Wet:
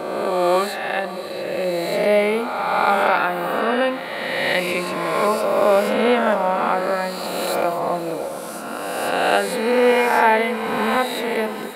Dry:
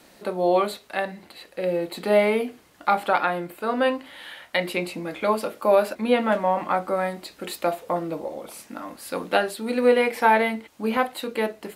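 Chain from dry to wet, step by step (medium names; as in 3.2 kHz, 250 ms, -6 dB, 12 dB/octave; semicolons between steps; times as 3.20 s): reverse spectral sustain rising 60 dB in 2.04 s; echo that smears into a reverb 597 ms, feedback 46%, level -13.5 dB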